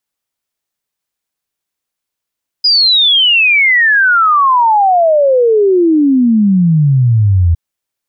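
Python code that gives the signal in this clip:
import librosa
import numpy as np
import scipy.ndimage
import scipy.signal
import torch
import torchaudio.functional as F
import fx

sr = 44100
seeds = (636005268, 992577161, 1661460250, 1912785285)

y = fx.ess(sr, length_s=4.91, from_hz=5000.0, to_hz=81.0, level_db=-6.0)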